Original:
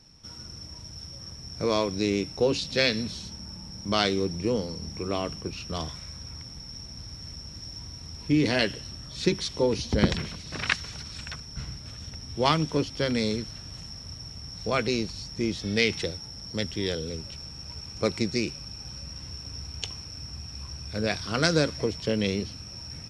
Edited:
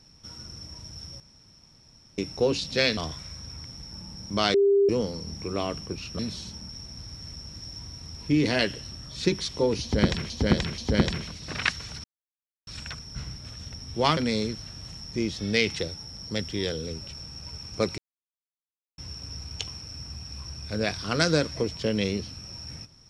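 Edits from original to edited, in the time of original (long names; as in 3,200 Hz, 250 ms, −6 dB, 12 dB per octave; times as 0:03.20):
0:01.20–0:02.18: fill with room tone
0:02.97–0:03.47: swap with 0:05.74–0:06.69
0:04.09–0:04.44: beep over 399 Hz −16.5 dBFS
0:09.82–0:10.30: repeat, 3 plays
0:11.08: splice in silence 0.63 s
0:12.58–0:13.06: remove
0:13.94–0:15.28: remove
0:18.21–0:19.21: silence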